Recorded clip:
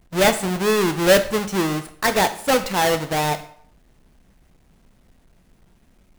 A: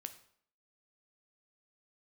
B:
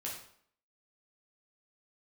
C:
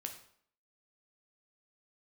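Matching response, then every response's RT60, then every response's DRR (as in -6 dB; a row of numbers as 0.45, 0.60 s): A; 0.60, 0.60, 0.60 s; 8.0, -5.0, 3.5 dB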